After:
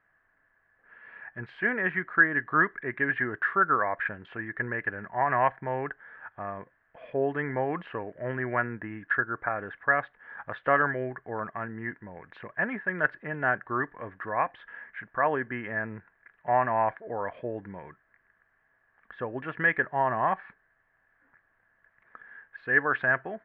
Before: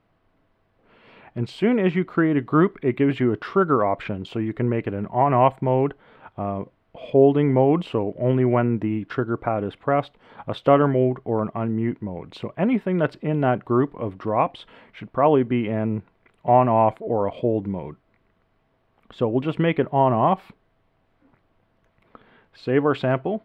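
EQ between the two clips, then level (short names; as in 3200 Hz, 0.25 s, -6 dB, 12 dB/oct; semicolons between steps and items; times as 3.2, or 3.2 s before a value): synth low-pass 1700 Hz, resonance Q 14; low shelf 200 Hz -7.5 dB; bell 290 Hz -6.5 dB 2.3 oct; -6.5 dB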